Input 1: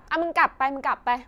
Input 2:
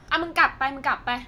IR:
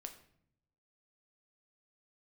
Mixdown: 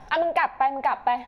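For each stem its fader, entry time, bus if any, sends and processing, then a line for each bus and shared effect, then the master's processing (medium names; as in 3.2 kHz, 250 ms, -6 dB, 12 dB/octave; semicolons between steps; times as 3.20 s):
+2.5 dB, 0.00 s, send -6 dB, Chebyshev low-pass 4.3 kHz, order 8
0.0 dB, 3.2 ms, no send, auto duck -10 dB, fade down 0.20 s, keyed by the first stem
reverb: on, RT60 0.65 s, pre-delay 7 ms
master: graphic EQ with 31 bands 100 Hz -12 dB, 315 Hz -8 dB, 800 Hz +9 dB, 1.25 kHz -9 dB; compression, threshold -19 dBFS, peak gain reduction 10.5 dB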